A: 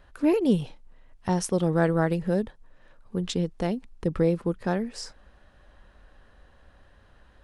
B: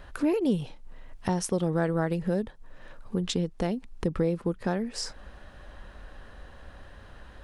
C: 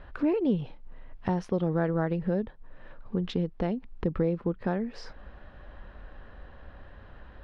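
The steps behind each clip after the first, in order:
compressor 2:1, threshold -41 dBFS, peak gain reduction 13.5 dB; gain +8.5 dB
air absorption 290 m

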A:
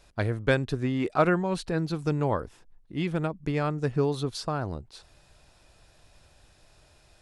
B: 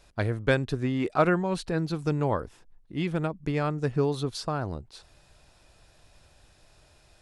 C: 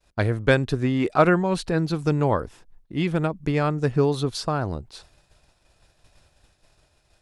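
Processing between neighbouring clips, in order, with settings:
nothing audible
expander -50 dBFS; gain +5 dB

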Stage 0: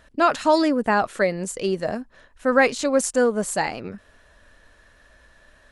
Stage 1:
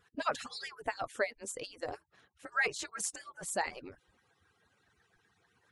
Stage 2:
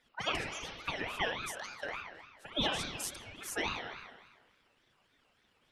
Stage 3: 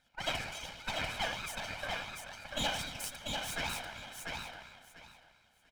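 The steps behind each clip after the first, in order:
median-filter separation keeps percussive; gain -9 dB
spring tank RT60 1.3 s, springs 32/57 ms, chirp 25 ms, DRR 0 dB; ring modulator with a swept carrier 1500 Hz, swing 30%, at 3.5 Hz
minimum comb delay 1.3 ms; on a send: feedback echo 0.692 s, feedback 20%, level -4 dB

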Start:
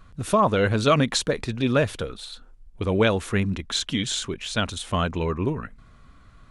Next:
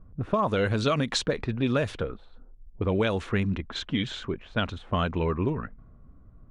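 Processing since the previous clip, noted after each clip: low-pass opened by the level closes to 480 Hz, open at -16 dBFS; compressor, threshold -21 dBFS, peak gain reduction 7.5 dB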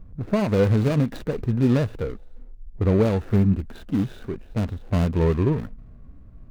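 median filter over 41 samples; harmonic-percussive split harmonic +9 dB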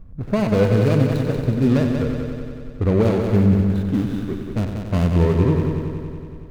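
multi-head echo 93 ms, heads first and second, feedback 67%, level -8.5 dB; gain +1.5 dB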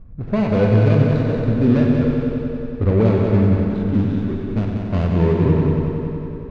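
air absorption 160 m; plate-style reverb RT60 3 s, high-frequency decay 0.8×, DRR 2.5 dB

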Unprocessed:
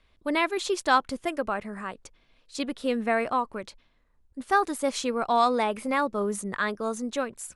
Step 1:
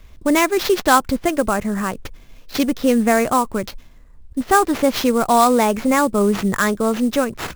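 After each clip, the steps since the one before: low shelf 240 Hz +11 dB; in parallel at +2 dB: compressor, threshold -32 dBFS, peak gain reduction 16.5 dB; on the sum: sample-rate reducer 9000 Hz, jitter 20%; gain +5 dB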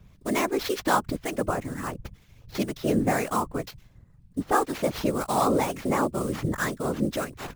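whisperiser; harmonic tremolo 2 Hz, depth 50%, crossover 1300 Hz; gain -7 dB

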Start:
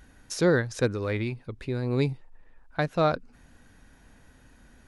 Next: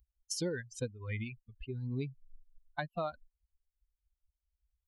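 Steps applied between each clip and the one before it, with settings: per-bin expansion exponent 3; compressor 5:1, threshold -38 dBFS, peak gain reduction 16.5 dB; gain +3.5 dB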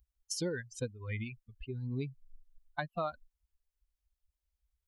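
dynamic EQ 1200 Hz, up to +4 dB, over -53 dBFS, Q 3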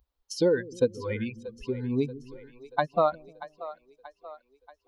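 graphic EQ 250/500/1000/4000/8000 Hz +9/+12/+11/+8/-7 dB; split-band echo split 400 Hz, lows 0.152 s, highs 0.633 s, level -15 dB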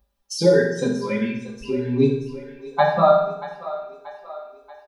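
comb 5 ms, depth 98%; reverb RT60 0.75 s, pre-delay 3 ms, DRR -5.5 dB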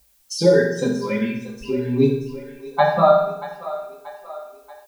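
added noise blue -61 dBFS; gain +1 dB

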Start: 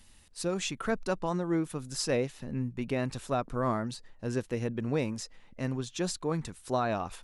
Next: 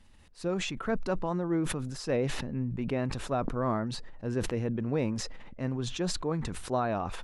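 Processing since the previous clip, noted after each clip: LPF 1800 Hz 6 dB/oct; sustainer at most 34 dB/s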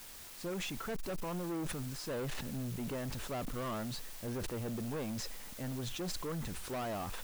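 in parallel at -7.5 dB: requantised 6-bit, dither triangular; on the sum: hard clip -28.5 dBFS, distortion -7 dB; gain -7 dB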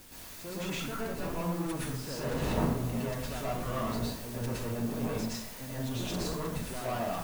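wind noise 430 Hz -45 dBFS; reverb RT60 0.60 s, pre-delay 0.102 s, DRR -8 dB; gain -4 dB

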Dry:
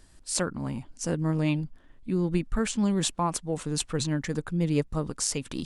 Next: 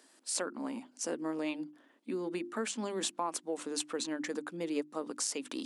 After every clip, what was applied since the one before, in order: Chebyshev high-pass 250 Hz, order 4; notches 50/100/150/200/250/300/350 Hz; compressor 2:1, threshold -35 dBFS, peak gain reduction 7.5 dB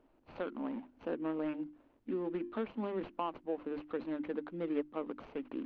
median filter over 25 samples; inverse Chebyshev low-pass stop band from 9100 Hz, stop band 60 dB; added noise brown -74 dBFS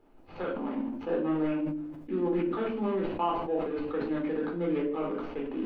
shoebox room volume 510 m³, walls furnished, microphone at 4 m; sustainer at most 44 dB/s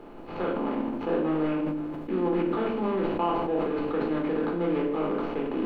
per-bin compression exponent 0.6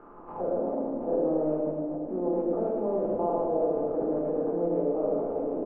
on a send: reverse bouncing-ball echo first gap 0.11 s, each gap 1.2×, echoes 5; on the sum: envelope low-pass 630–1400 Hz down, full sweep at -28 dBFS; gain -7.5 dB

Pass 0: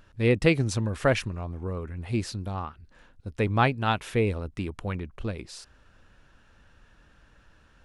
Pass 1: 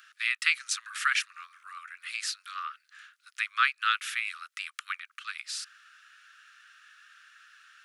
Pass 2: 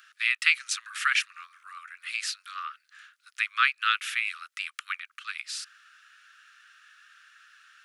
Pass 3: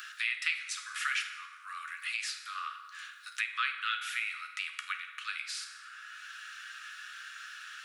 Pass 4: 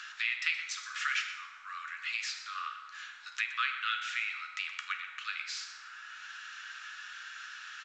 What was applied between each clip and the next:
steep high-pass 1200 Hz 96 dB/oct; in parallel at +1 dB: compressor, threshold -41 dBFS, peak gain reduction 17.5 dB; on the sum: gain +2 dB
dynamic EQ 2600 Hz, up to +4 dB, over -42 dBFS, Q 1.5
reverb RT60 0.95 s, pre-delay 5 ms, DRR 3.5 dB; three-band squash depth 70%; gain -6.5 dB
band noise 890–2700 Hz -64 dBFS; outdoor echo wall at 21 m, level -12 dB; A-law 128 kbps 16000 Hz

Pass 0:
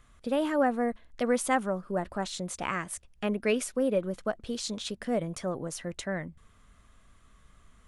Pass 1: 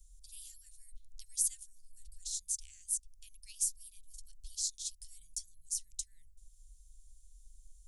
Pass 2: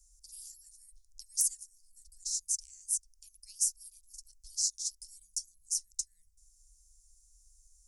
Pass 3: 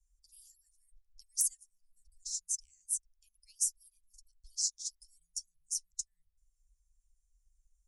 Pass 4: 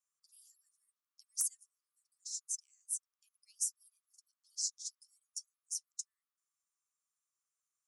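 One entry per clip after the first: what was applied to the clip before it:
inverse Chebyshev band-stop 220–1200 Hz, stop band 80 dB; gain +5 dB
wrapped overs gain 17 dB; added harmonics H 2 -38 dB, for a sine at -17 dBFS; resonant high shelf 4200 Hz +8.5 dB, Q 3; gain -7.5 dB
per-bin expansion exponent 1.5
ladder high-pass 1100 Hz, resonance 75%; gain +8 dB

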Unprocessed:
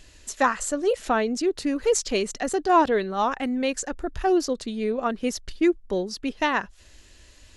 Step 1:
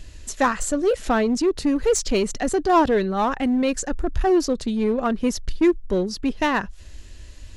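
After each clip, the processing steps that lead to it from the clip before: low shelf 210 Hz +11.5 dB; in parallel at -11.5 dB: wavefolder -21 dBFS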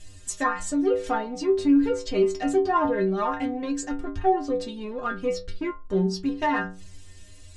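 treble ducked by the level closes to 1800 Hz, closed at -15 dBFS; bell 9200 Hz +9.5 dB 0.74 oct; metallic resonator 91 Hz, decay 0.5 s, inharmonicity 0.008; gain +7.5 dB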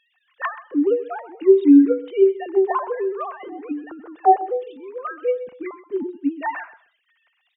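sine-wave speech; feedback echo 0.128 s, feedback 23%, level -16 dB; gain +4.5 dB

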